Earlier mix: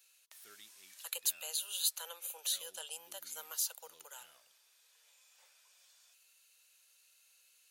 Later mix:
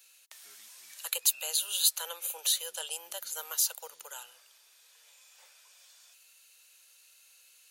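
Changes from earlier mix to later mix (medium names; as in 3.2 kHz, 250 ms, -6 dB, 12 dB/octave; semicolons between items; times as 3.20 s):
speech +7.5 dB; background -5.0 dB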